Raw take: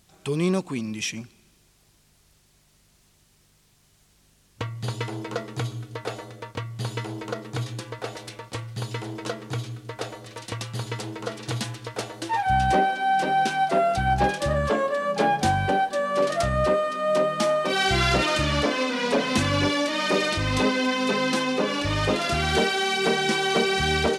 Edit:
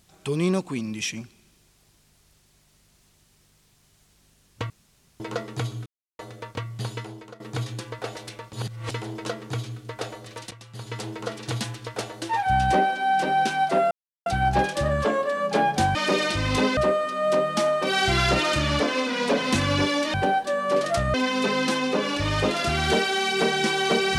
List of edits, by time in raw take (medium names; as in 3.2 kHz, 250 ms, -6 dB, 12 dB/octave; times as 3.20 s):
4.70–5.20 s: room tone
5.86–6.19 s: mute
6.76–7.40 s: fade out linear, to -18.5 dB
8.53–8.91 s: reverse
10.51–11.02 s: fade in quadratic, from -14.5 dB
13.91 s: insert silence 0.35 s
15.60–16.60 s: swap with 19.97–20.79 s